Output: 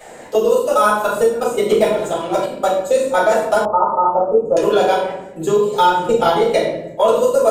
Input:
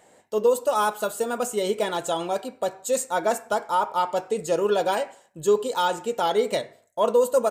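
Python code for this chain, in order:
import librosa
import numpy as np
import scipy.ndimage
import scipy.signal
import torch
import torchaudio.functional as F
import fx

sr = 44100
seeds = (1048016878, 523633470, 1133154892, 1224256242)

y = fx.level_steps(x, sr, step_db=23)
y = fx.low_shelf(y, sr, hz=270.0, db=11.5, at=(5.73, 6.27))
y = fx.room_shoebox(y, sr, seeds[0], volume_m3=120.0, walls='mixed', distance_m=3.9)
y = fx.leveller(y, sr, passes=1, at=(1.7, 2.46))
y = fx.ellip_lowpass(y, sr, hz=1200.0, order=4, stop_db=40, at=(3.65, 4.57))
y = fx.band_squash(y, sr, depth_pct=70)
y = F.gain(torch.from_numpy(y), -1.5).numpy()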